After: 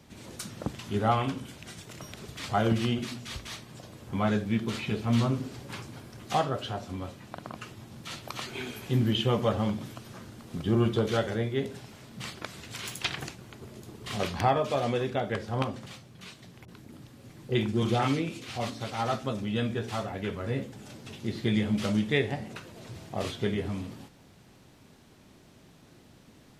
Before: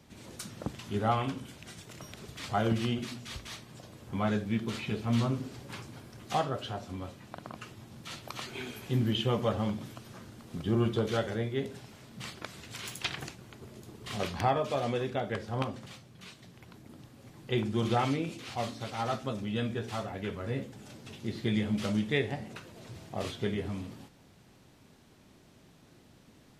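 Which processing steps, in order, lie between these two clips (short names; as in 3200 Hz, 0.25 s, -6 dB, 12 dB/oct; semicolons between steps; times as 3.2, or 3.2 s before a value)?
16.65–18.7 bands offset in time lows, highs 30 ms, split 800 Hz; gain +3 dB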